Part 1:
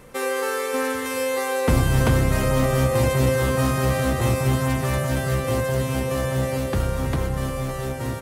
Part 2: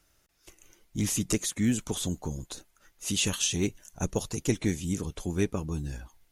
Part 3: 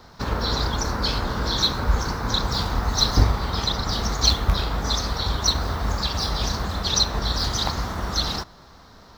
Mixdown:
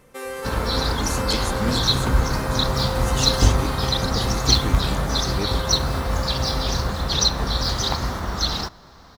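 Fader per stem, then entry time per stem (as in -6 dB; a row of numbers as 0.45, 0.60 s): -7.0, -2.0, +1.0 dB; 0.00, 0.00, 0.25 s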